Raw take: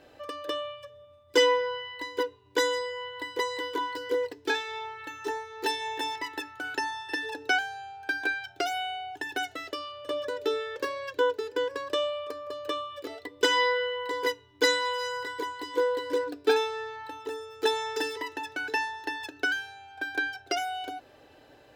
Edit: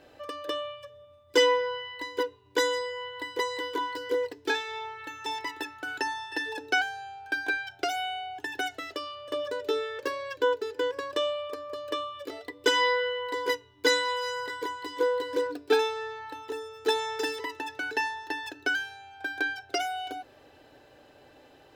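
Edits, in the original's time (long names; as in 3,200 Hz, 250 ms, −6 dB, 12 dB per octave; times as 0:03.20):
0:05.26–0:06.03: remove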